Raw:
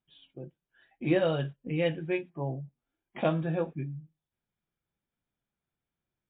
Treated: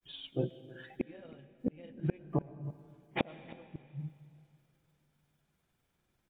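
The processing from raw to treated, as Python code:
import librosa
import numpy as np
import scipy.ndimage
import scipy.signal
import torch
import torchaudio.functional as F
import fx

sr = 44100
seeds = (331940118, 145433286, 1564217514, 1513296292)

p1 = fx.granulator(x, sr, seeds[0], grain_ms=100.0, per_s=20.0, spray_ms=22.0, spread_st=0)
p2 = fx.gate_flip(p1, sr, shuts_db=-30.0, range_db=-37)
p3 = p2 + fx.echo_single(p2, sr, ms=317, db=-19.5, dry=0)
p4 = fx.rev_freeverb(p3, sr, rt60_s=2.6, hf_ratio=0.95, predelay_ms=70, drr_db=16.0)
y = p4 * 10.0 ** (12.0 / 20.0)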